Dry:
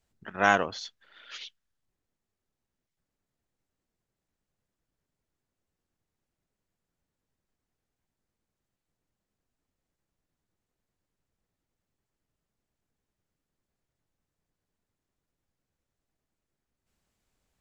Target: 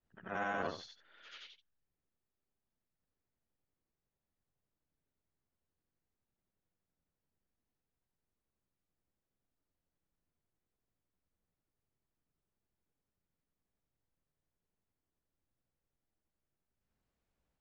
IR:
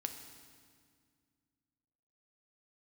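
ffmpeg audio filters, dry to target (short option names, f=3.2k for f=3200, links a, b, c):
-af "afftfilt=real='re':imag='-im':win_size=8192:overlap=0.75,alimiter=limit=-22.5dB:level=0:latency=1:release=17,aemphasis=mode=reproduction:type=75kf,volume=-1dB"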